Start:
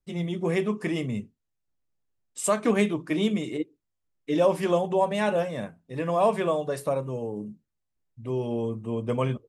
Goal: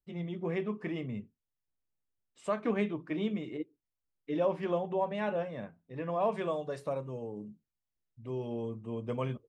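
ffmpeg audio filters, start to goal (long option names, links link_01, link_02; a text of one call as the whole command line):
ffmpeg -i in.wav -af "asetnsamples=nb_out_samples=441:pad=0,asendcmd='6.32 lowpass f 6000',lowpass=2900,volume=-8dB" out.wav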